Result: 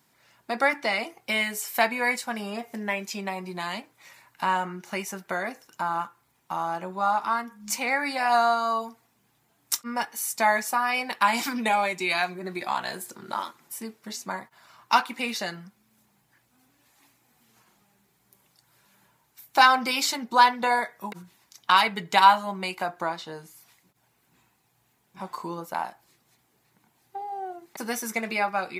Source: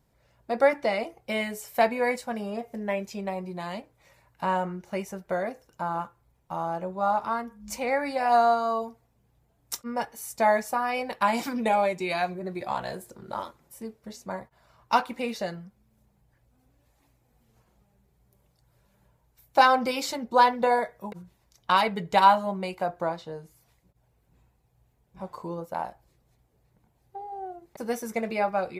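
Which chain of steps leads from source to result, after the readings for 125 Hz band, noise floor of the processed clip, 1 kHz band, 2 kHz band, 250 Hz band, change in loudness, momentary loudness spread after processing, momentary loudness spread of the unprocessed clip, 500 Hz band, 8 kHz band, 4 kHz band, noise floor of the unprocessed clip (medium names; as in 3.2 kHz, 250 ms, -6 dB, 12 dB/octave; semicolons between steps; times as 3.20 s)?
-3.0 dB, -68 dBFS, +1.5 dB, +5.5 dB, -1.0 dB, +1.5 dB, 17 LU, 19 LU, -4.5 dB, +8.0 dB, +6.5 dB, -68 dBFS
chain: high-pass 310 Hz 12 dB/octave; peaking EQ 530 Hz -14 dB 1.1 oct; in parallel at -0.5 dB: compression, threshold -43 dBFS, peak gain reduction 24 dB; on the sum: trim +5.5 dB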